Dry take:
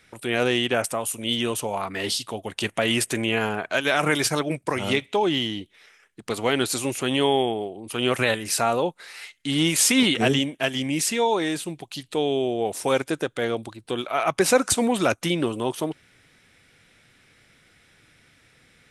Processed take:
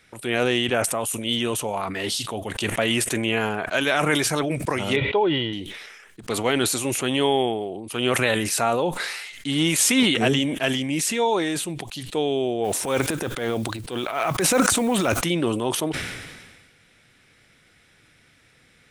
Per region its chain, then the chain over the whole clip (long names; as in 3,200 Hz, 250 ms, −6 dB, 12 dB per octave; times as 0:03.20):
0:04.96–0:05.53: Butterworth low-pass 4,400 Hz + high-shelf EQ 2,900 Hz −10 dB + comb filter 2.1 ms, depth 49%
0:12.64–0:15.24: transient designer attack −7 dB, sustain +9 dB + noise that follows the level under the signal 27 dB
whole clip: dynamic equaliser 4,900 Hz, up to −4 dB, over −46 dBFS, Q 5; level that may fall only so fast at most 39 dB per second